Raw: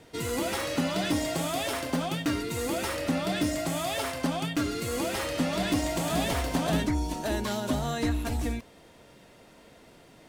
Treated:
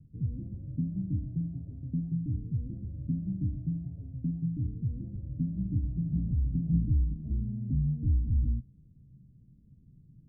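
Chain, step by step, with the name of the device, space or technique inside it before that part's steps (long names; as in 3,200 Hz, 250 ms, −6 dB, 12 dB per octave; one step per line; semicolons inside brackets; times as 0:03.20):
the neighbour's flat through the wall (low-pass filter 170 Hz 24 dB per octave; parametric band 130 Hz +5 dB 0.49 octaves)
level +4.5 dB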